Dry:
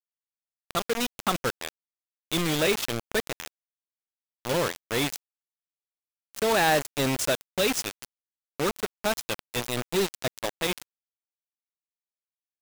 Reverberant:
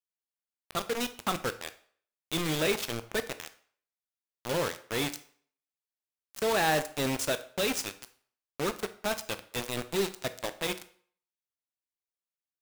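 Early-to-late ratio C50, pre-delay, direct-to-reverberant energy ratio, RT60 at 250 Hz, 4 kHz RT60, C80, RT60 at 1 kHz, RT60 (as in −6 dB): 15.0 dB, 14 ms, 10.5 dB, 0.45 s, 0.45 s, 19.0 dB, 0.55 s, 0.50 s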